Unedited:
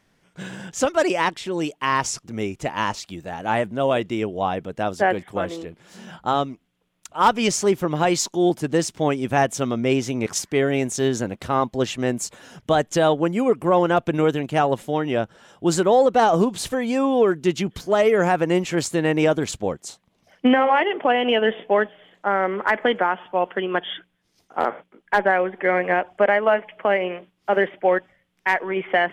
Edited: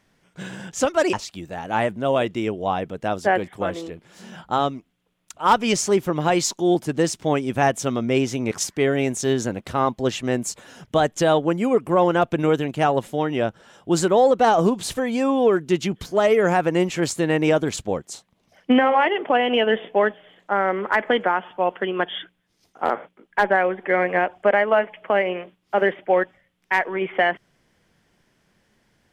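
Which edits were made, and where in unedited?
0:01.13–0:02.88: remove

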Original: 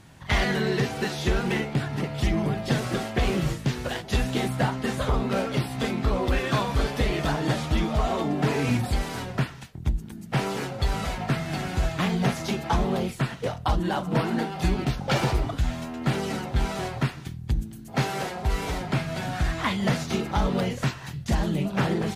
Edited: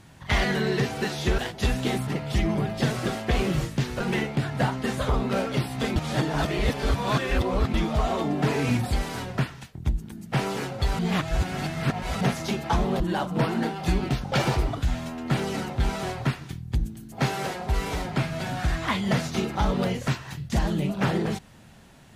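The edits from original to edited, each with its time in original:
0:01.38–0:01.95: swap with 0:03.88–0:04.57
0:05.96–0:07.74: reverse
0:10.99–0:12.21: reverse
0:13.00–0:13.76: remove

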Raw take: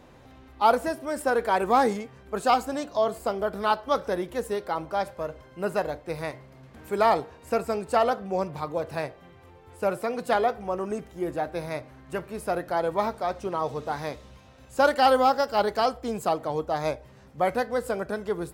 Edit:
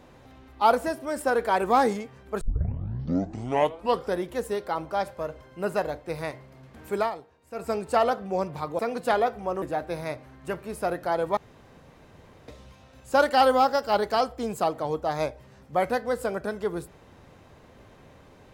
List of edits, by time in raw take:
0:02.41: tape start 1.76 s
0:06.96–0:07.69: duck −13.5 dB, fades 0.15 s
0:08.79–0:10.01: remove
0:10.84–0:11.27: remove
0:13.02–0:14.13: fill with room tone

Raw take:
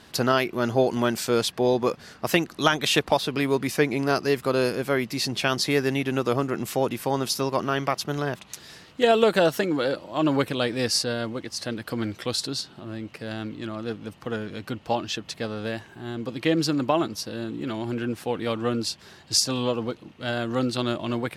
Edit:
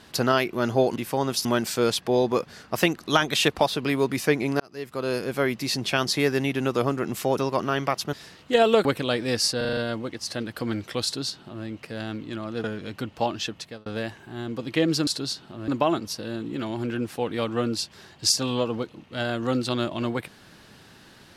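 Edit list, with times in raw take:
0:04.11–0:04.91: fade in
0:06.89–0:07.38: move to 0:00.96
0:08.13–0:08.62: remove
0:09.34–0:10.36: remove
0:11.08: stutter 0.04 s, 6 plays
0:12.35–0:12.96: duplicate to 0:16.76
0:13.95–0:14.33: remove
0:15.21–0:15.55: fade out

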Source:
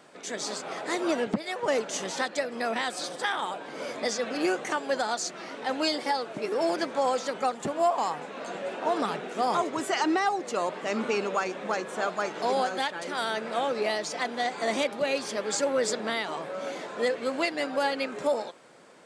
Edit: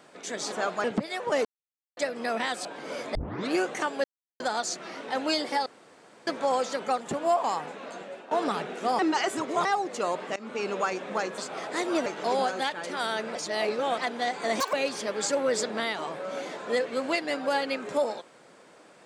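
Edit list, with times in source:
0:00.52–0:01.20: swap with 0:11.92–0:12.24
0:01.81–0:02.33: silence
0:03.01–0:03.55: remove
0:04.05: tape start 0.36 s
0:04.94: splice in silence 0.36 s
0:06.20–0:06.81: fill with room tone
0:08.20–0:08.85: fade out, to −13.5 dB
0:09.53–0:10.19: reverse
0:10.90–0:11.30: fade in, from −21 dB
0:13.53–0:14.16: reverse
0:14.78–0:15.03: play speed 188%

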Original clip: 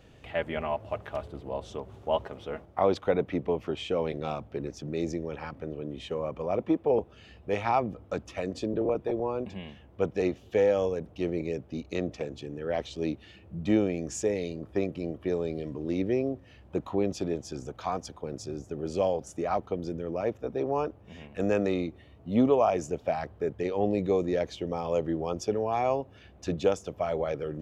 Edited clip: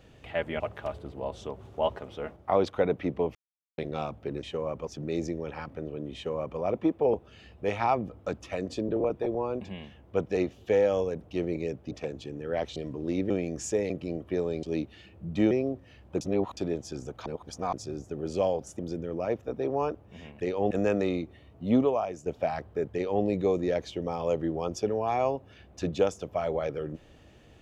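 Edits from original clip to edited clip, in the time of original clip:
0:00.60–0:00.89: remove
0:03.64–0:04.07: silence
0:06.00–0:06.44: duplicate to 0:04.72
0:11.76–0:12.08: remove
0:12.93–0:13.81: swap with 0:15.57–0:16.11
0:14.41–0:14.84: remove
0:16.81–0:17.17: reverse
0:17.86–0:18.33: reverse
0:19.39–0:19.75: remove
0:22.43–0:22.91: fade out quadratic, to −9.5 dB
0:23.58–0:23.89: duplicate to 0:21.36

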